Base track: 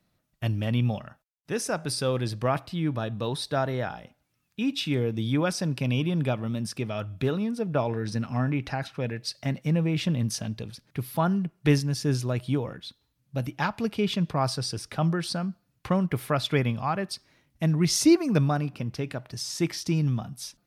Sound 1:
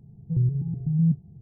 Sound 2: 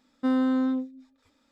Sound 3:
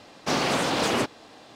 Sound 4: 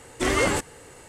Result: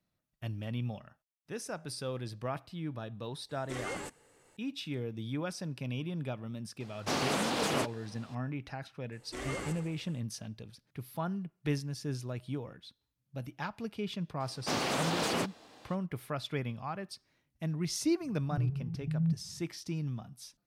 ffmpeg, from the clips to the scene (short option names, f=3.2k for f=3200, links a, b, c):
-filter_complex "[4:a]asplit=2[a][b];[3:a]asplit=2[c][d];[0:a]volume=-11dB[e];[a]equalizer=f=61:t=o:w=0.77:g=-13.5[f];[c]equalizer=f=11k:w=1.1:g=6[g];[b]aecho=1:1:77|154|231|308|385|462|539:0.316|0.187|0.11|0.0649|0.0383|0.0226|0.0133[h];[d]highshelf=f=9.6k:g=7[i];[f]atrim=end=1.08,asetpts=PTS-STARTPTS,volume=-17dB,afade=t=in:d=0.004:c=hsin,afade=t=out:st=1.076:d=0.004:c=hsin,adelay=153909S[j];[g]atrim=end=1.55,asetpts=PTS-STARTPTS,volume=-7.5dB,afade=t=in:d=0.004:c=hsin,afade=t=out:st=1.546:d=0.004:c=hsin,adelay=6800[k];[h]atrim=end=1.08,asetpts=PTS-STARTPTS,volume=-17.5dB,afade=t=in:d=0.004:c=hsin,afade=t=out:st=1.076:d=0.004:c=hsin,adelay=9120[l];[i]atrim=end=1.55,asetpts=PTS-STARTPTS,volume=-8dB,afade=t=in:d=0.004:c=hsin,afade=t=out:st=1.546:d=0.004:c=hsin,adelay=14400[m];[1:a]atrim=end=1.41,asetpts=PTS-STARTPTS,volume=-9dB,afade=t=in:d=0.004:c=hsin,afade=t=out:st=1.406:d=0.004:c=hsin,adelay=18210[n];[e][j][k][l][m][n]amix=inputs=6:normalize=0"